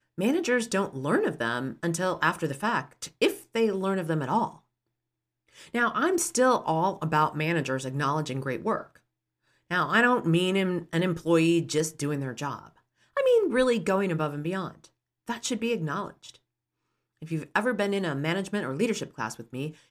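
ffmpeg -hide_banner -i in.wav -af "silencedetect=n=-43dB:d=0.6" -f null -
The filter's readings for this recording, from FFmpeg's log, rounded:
silence_start: 4.56
silence_end: 5.57 | silence_duration: 1.01
silence_start: 8.97
silence_end: 9.70 | silence_duration: 0.74
silence_start: 16.35
silence_end: 17.22 | silence_duration: 0.87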